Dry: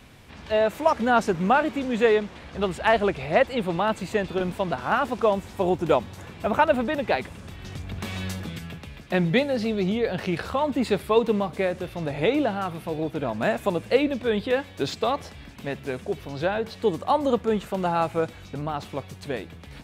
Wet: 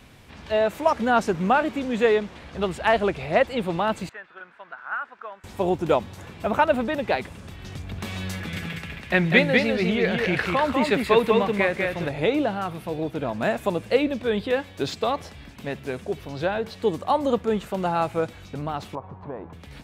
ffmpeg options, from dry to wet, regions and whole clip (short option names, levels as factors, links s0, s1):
-filter_complex "[0:a]asettb=1/sr,asplit=3[s0][s1][s2];[s0]atrim=end=4.094[s3];[s1]atrim=start=4.09:end=5.44,asetpts=PTS-STARTPTS,afade=t=in:d=0.004:c=qsin,afade=t=out:st=1.346:d=0.004:c=qsin,lowpass=f=1500:t=q:w=4,aderivative[s4];[s2]atrim=start=5.436[s5];[s3][s4]acrossfade=d=0.004:c1=hsin:c2=qsin[s6];[s6][s5]acrossfade=d=0.004:c1=qsin:c2=hsin,asettb=1/sr,asplit=3[s7][s8][s9];[s7]atrim=end=8.334[s10];[s8]atrim=start=8.33:end=12.09,asetpts=PTS-STARTPTS,afade=t=in:d=0.004:c=qsin,afade=t=out:st=3.756:d=0.004:c=qsin,equalizer=f=2000:w=1.2:g=9.5,aecho=1:1:198:0.668,atrim=end_sample=165816[s11];[s9]atrim=start=12.086[s12];[s10][s11]acrossfade=d=0.004:c1=hsin:c2=qsin[s13];[s13][s12]acrossfade=d=0.004:c1=qsin:c2=hsin,asettb=1/sr,asplit=3[s14][s15][s16];[s14]atrim=end=18.954[s17];[s15]atrim=start=18.95:end=19.53,asetpts=PTS-STARTPTS,afade=t=in:d=0.004:c=qsin,afade=t=out:st=0.576:d=0.004:c=qsin,acompressor=threshold=0.0251:ratio=4:attack=3.2:release=140:knee=1:detection=peak,lowpass=f=980:t=q:w=4.3[s18];[s16]atrim=start=19.526[s19];[s17][s18]acrossfade=d=0.004:c1=hsin:c2=qsin[s20];[s20][s19]acrossfade=d=0.004:c1=qsin:c2=hsin"